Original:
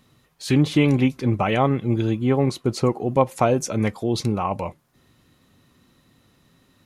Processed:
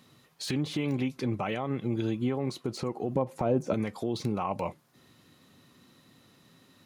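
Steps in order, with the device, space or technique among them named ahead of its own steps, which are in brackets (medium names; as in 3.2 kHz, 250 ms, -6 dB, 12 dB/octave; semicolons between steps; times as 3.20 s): broadcast voice chain (high-pass 120 Hz 12 dB/octave; de-esser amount 75%; compression 4:1, threshold -26 dBFS, peak gain reduction 12.5 dB; peaking EQ 4.4 kHz +2.5 dB; peak limiter -20.5 dBFS, peak gain reduction 9.5 dB); 3.15–3.74 s: tilt shelf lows +7.5 dB, about 1.3 kHz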